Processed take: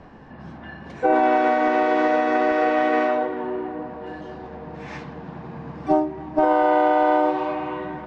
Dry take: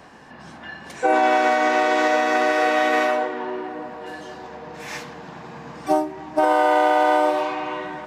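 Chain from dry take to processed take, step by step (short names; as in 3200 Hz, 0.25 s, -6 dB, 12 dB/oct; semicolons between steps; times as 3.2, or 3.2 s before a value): LPF 4900 Hz 12 dB/oct; tilt -3 dB/oct; de-hum 120.9 Hz, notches 35; gain -2 dB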